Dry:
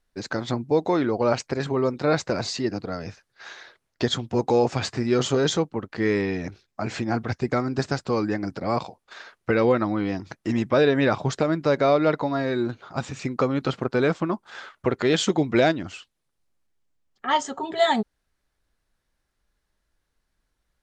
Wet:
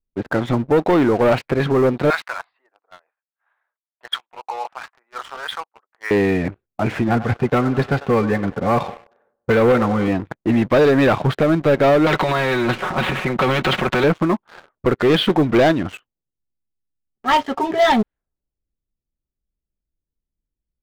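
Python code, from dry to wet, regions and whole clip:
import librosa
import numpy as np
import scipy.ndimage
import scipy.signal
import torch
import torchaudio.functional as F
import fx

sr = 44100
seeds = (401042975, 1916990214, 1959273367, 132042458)

y = fx.chain(x, sr, fx.highpass(hz=1000.0, slope=24),
    fx.quant_float(bits=6), at=(2.1, 6.11))
y = fx.chain(y, sr, fx.notch_comb(f0_hz=320.0),
    fx.echo_wet_bandpass(ms=96, feedback_pct=63, hz=870.0, wet_db=-15.0), at=(7.08, 10.08))
y = fx.chain(y, sr, fx.comb(ms=5.4, depth=0.92),
    fx.transient(attack_db=-1, sustain_db=8),
    fx.spectral_comp(ratio=2.0), at=(12.06, 14.04))
y = scipy.signal.sosfilt(scipy.signal.cheby2(4, 40, 6600.0, 'lowpass', fs=sr, output='sos'), y)
y = fx.env_lowpass(y, sr, base_hz=330.0, full_db=-21.0)
y = fx.leveller(y, sr, passes=3)
y = y * librosa.db_to_amplitude(-1.5)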